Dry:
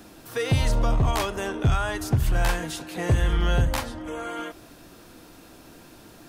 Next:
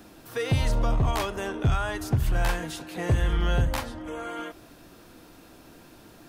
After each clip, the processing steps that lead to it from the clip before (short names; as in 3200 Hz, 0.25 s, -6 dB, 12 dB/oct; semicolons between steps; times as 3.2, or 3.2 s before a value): bell 8000 Hz -2.5 dB 1.7 oct; gain -2 dB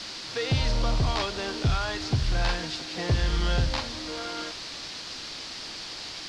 requantised 6-bit, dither triangular; ladder low-pass 5300 Hz, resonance 55%; gain +8.5 dB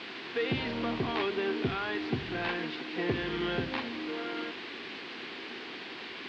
requantised 6-bit, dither triangular; speaker cabinet 230–3000 Hz, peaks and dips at 240 Hz +6 dB, 380 Hz +7 dB, 590 Hz -9 dB, 890 Hz -4 dB, 1300 Hz -5 dB